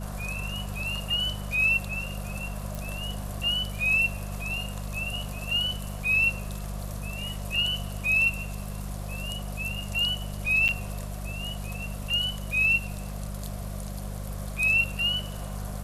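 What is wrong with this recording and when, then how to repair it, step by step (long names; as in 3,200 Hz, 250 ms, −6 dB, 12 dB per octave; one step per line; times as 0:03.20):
mains hum 50 Hz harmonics 4 −35 dBFS
0:02.75: click
0:10.68–0:10.69: drop-out 8.2 ms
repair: click removal
hum removal 50 Hz, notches 4
repair the gap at 0:10.68, 8.2 ms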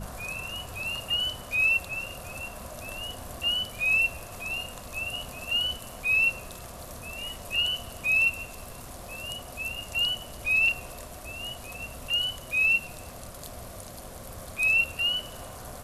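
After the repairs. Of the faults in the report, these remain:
none of them is left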